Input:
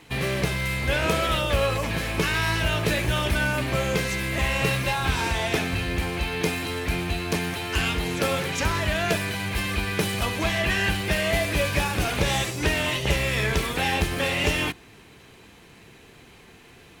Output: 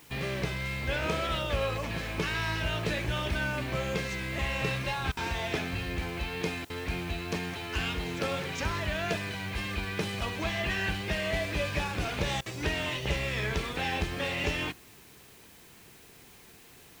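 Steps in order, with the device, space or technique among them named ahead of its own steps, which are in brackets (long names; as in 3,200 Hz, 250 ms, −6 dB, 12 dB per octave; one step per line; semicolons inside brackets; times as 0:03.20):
worn cassette (low-pass filter 6,600 Hz 12 dB per octave; tape wow and flutter 29 cents; tape dropouts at 0:05.12/0:06.65/0:12.41, 48 ms −23 dB; white noise bed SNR 24 dB)
level −7 dB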